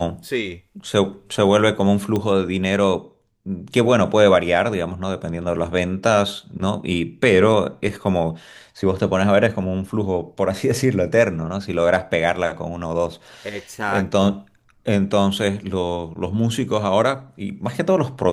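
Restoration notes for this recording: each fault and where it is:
0:02.16: click −11 dBFS

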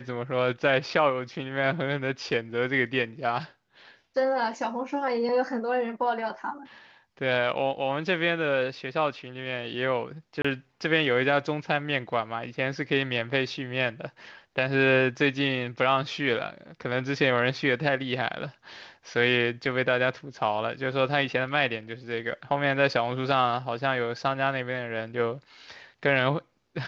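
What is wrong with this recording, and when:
0:10.42–0:10.45: drop-out 25 ms

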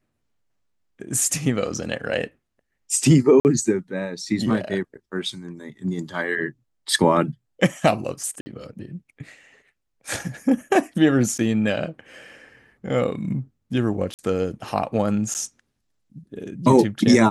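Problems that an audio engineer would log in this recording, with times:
0:03.40–0:03.45: drop-out 49 ms
0:08.41–0:08.46: drop-out 50 ms
0:11.38–0:11.39: drop-out 9.3 ms
0:14.14–0:14.19: drop-out 48 ms
0:15.34–0:15.35: drop-out 9.5 ms

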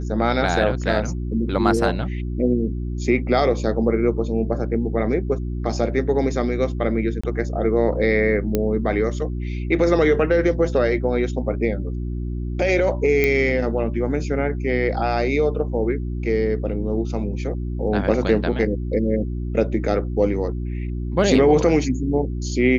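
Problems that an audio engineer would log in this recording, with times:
mains hum 60 Hz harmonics 6 −26 dBFS
0:07.21–0:07.24: drop-out 25 ms
0:08.55: click −7 dBFS
0:13.24: click −7 dBFS

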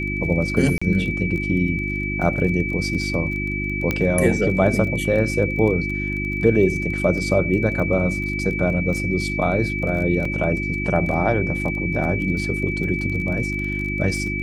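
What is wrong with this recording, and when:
surface crackle 20 per second −28 dBFS
mains hum 50 Hz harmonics 7 −27 dBFS
whistle 2,300 Hz −26 dBFS
0:00.78–0:00.81: drop-out 35 ms
0:03.91: click −8 dBFS
0:10.25: drop-out 3.7 ms

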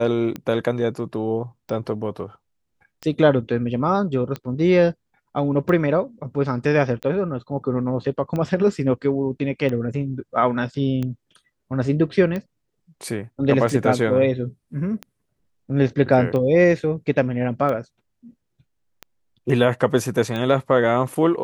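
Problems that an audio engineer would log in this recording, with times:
scratch tick 45 rpm −16 dBFS

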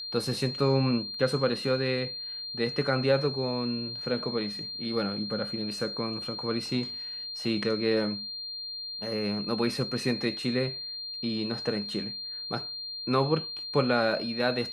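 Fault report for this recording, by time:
whistle 4,200 Hz −35 dBFS

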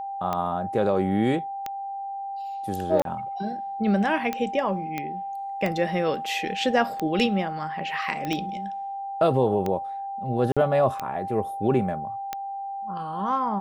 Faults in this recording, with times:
scratch tick 45 rpm −14 dBFS
whistle 790 Hz −30 dBFS
0:03.02–0:03.05: drop-out 32 ms
0:04.98: click −15 dBFS
0:08.25: click −17 dBFS
0:10.52–0:10.57: drop-out 46 ms

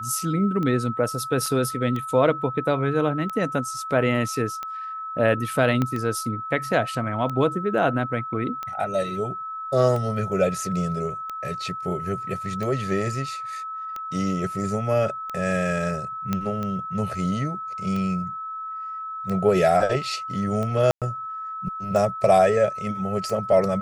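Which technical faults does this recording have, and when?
scratch tick 45 rpm −18 dBFS
whistle 1,300 Hz −30 dBFS
0:01.46: drop-out 3.1 ms
0:05.82: click −12 dBFS
0:16.33: click −11 dBFS
0:20.91–0:21.02: drop-out 107 ms

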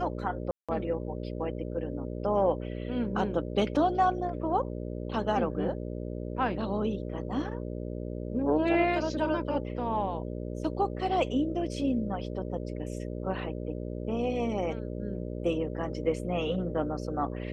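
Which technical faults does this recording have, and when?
mains buzz 60 Hz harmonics 10 −36 dBFS
0:00.51–0:00.69: drop-out 176 ms

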